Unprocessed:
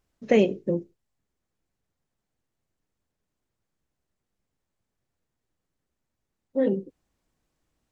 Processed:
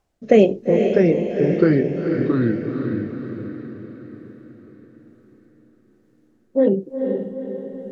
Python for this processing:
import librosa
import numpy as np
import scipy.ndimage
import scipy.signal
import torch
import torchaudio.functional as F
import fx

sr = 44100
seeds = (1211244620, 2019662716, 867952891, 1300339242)

p1 = fx.peak_eq(x, sr, hz=770.0, db=9.5, octaves=0.93)
p2 = fx.echo_pitch(p1, sr, ms=589, semitones=-3, count=3, db_per_echo=-3.0)
p3 = fx.rotary(p2, sr, hz=1.1)
p4 = p3 + fx.echo_diffused(p3, sr, ms=463, feedback_pct=53, wet_db=-5.5, dry=0)
y = F.gain(torch.from_numpy(p4), 6.0).numpy()